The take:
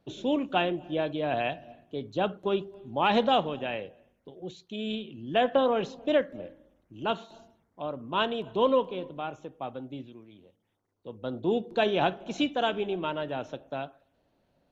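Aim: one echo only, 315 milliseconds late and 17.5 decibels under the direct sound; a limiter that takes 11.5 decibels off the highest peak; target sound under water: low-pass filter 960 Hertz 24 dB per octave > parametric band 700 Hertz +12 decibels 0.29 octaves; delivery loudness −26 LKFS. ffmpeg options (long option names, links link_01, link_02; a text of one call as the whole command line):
ffmpeg -i in.wav -af "alimiter=limit=-23.5dB:level=0:latency=1,lowpass=frequency=960:width=0.5412,lowpass=frequency=960:width=1.3066,equalizer=frequency=700:width_type=o:width=0.29:gain=12,aecho=1:1:315:0.133,volume=5.5dB" out.wav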